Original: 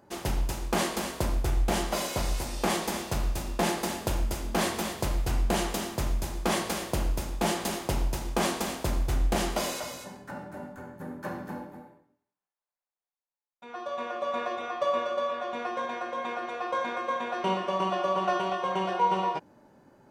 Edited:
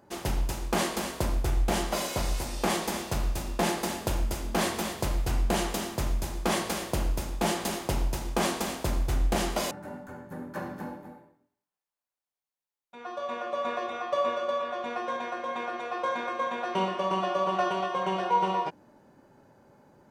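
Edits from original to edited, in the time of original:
9.71–10.4 cut

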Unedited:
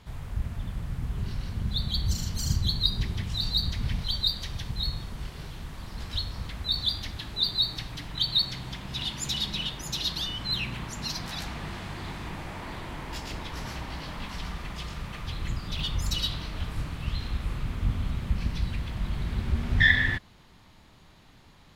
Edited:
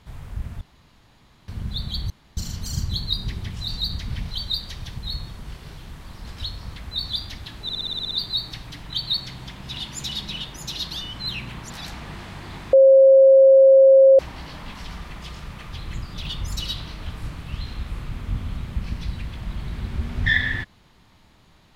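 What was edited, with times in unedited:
0.61–1.48 room tone
2.1 insert room tone 0.27 s
7.36 stutter 0.06 s, 9 plays
10.95–11.24 cut
12.27–13.73 bleep 537 Hz -8 dBFS

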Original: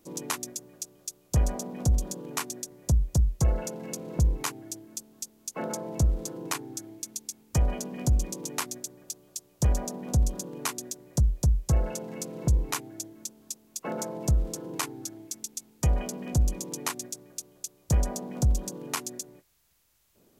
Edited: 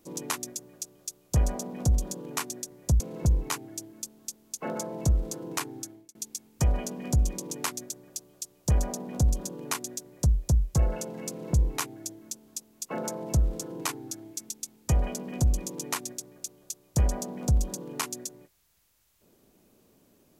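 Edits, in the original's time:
3–3.94 cut
6.73–7.09 fade out

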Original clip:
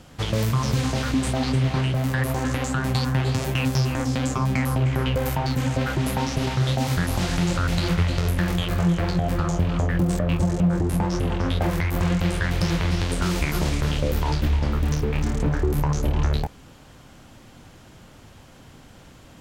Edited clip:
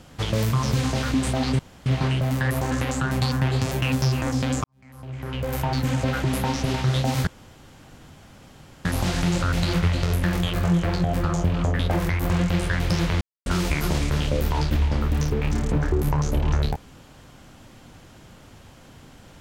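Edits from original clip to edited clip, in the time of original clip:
1.59 insert room tone 0.27 s
4.37–5.4 fade in quadratic
7 insert room tone 1.58 s
9.94–11.5 cut
12.92–13.17 mute

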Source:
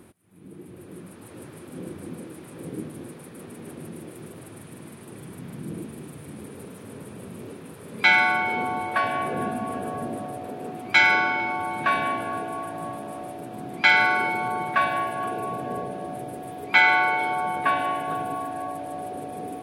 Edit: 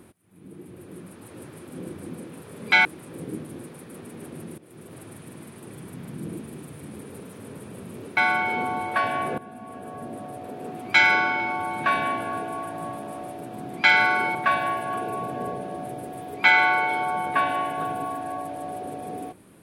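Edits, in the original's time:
4.03–4.43 fade in, from -15.5 dB
7.62–8.17 move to 2.3
9.38–10.83 fade in, from -17 dB
14.35–14.65 cut

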